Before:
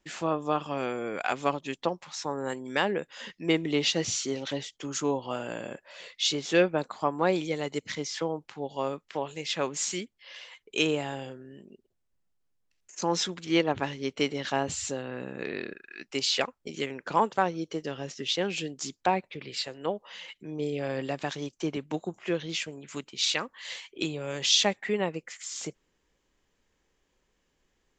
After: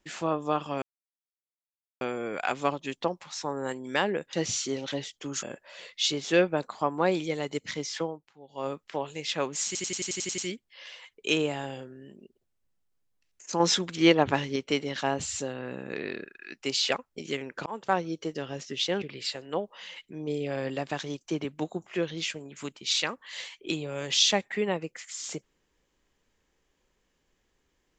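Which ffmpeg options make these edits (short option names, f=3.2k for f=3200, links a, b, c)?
-filter_complex "[0:a]asplit=18[a][b][c][d][e][f][g][h][i][j][k][l][m][n][o][p][q][r];[a]atrim=end=0.82,asetpts=PTS-STARTPTS,afade=t=out:st=0.816:d=0.004:c=hsin,apad=pad_dur=1.19[s];[b]atrim=start=0.82:end=3.142,asetpts=PTS-STARTPTS,afade=t=in:d=0.004:c=hsin[t];[c]atrim=start=3.918:end=5.022[u];[d]atrim=start=5.638:end=8.51,asetpts=PTS-STARTPTS,afade=t=out:st=2.602:d=0.27:c=qua:silence=0.158489[v];[e]atrim=start=8.51:end=8.62,asetpts=PTS-STARTPTS,volume=-16dB[w];[f]atrim=start=8.62:end=9.962,asetpts=PTS-STARTPTS,afade=t=in:d=0.27:c=qua:silence=0.158489[x];[g]atrim=start=9.868:end=9.962[y];[h]atrim=start=9.868:end=9.962[z];[i]atrim=start=9.868:end=9.962[aa];[j]atrim=start=9.868:end=9.962[ab];[k]atrim=start=9.868:end=9.962[ac];[l]atrim=start=9.868:end=9.962[ad];[m]atrim=start=9.868:end=9.962[ae];[n]atrim=start=9.868:end=13.092[af];[o]atrim=start=13.088:end=14.052,asetpts=PTS-STARTPTS,volume=4.5dB[ag];[p]atrim=start=14.048:end=17.15,asetpts=PTS-STARTPTS,afade=t=out:st=3.098:d=0.004:c=hsin[ah];[q]atrim=start=17.15:end=18.512,asetpts=PTS-STARTPTS,afade=t=in:d=0.27[ai];[r]atrim=start=19.338[aj];[s][t]concat=n=2:v=0:a=1[ak];[ak][u]acrossfade=d=0.004:c1=hsin:c2=hsin[al];[v][w][x]concat=n=3:v=0:a=1[am];[al][am]acrossfade=d=0.004:c1=hsin:c2=hsin[an];[an][y]acrossfade=d=0.004:c1=hsin:c2=hsin[ao];[ao][z]acrossfade=d=0.004:c1=hsin:c2=hsin[ap];[ap][aa]acrossfade=d=0.004:c1=hsin:c2=hsin[aq];[aq][ab]acrossfade=d=0.004:c1=hsin:c2=hsin[ar];[ar][ac]acrossfade=d=0.004:c1=hsin:c2=hsin[as];[as][ad]acrossfade=d=0.004:c1=hsin:c2=hsin[at];[at][ae]acrossfade=d=0.004:c1=hsin:c2=hsin[au];[au][af]acrossfade=d=0.004:c1=hsin:c2=hsin[av];[av][ag]acrossfade=d=0.004:c1=hsin:c2=hsin[aw];[ah][ai]concat=n=2:v=0:a=1[ax];[aw][ax]acrossfade=d=0.004:c1=hsin:c2=hsin[ay];[ay][aj]acrossfade=d=0.004:c1=hsin:c2=hsin"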